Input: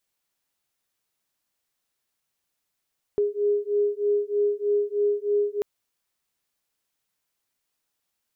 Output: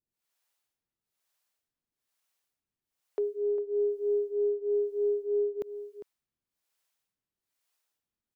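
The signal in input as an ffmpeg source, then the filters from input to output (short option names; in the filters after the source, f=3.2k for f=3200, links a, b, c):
-f lavfi -i "aevalsrc='0.0631*(sin(2*PI*410*t)+sin(2*PI*413.2*t))':d=2.44:s=44100"
-filter_complex "[0:a]acrossover=split=410[a][b];[a]aeval=exprs='val(0)*(1-1/2+1/2*cos(2*PI*1.1*n/s))':c=same[c];[b]aeval=exprs='val(0)*(1-1/2-1/2*cos(2*PI*1.1*n/s))':c=same[d];[c][d]amix=inputs=2:normalize=0,aeval=exprs='0.0794*(cos(1*acos(clip(val(0)/0.0794,-1,1)))-cos(1*PI/2))+0.000794*(cos(2*acos(clip(val(0)/0.0794,-1,1)))-cos(2*PI/2))':c=same,asplit=2[e][f];[f]adelay=402.3,volume=-11dB,highshelf=f=4k:g=-9.05[g];[e][g]amix=inputs=2:normalize=0"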